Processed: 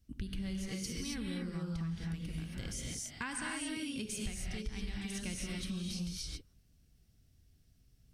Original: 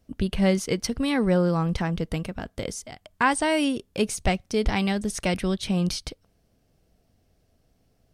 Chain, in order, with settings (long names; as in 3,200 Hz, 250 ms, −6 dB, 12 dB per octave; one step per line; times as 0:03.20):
guitar amp tone stack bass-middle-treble 6-0-2
reverb whose tail is shaped and stops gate 300 ms rising, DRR −2 dB
downward compressor 6 to 1, threshold −46 dBFS, peak gain reduction 15.5 dB
level +9.5 dB